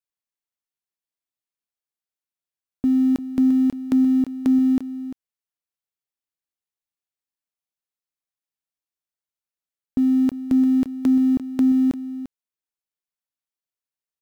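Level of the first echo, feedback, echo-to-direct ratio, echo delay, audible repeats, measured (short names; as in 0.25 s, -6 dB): -13.0 dB, no steady repeat, -13.0 dB, 0.346 s, 1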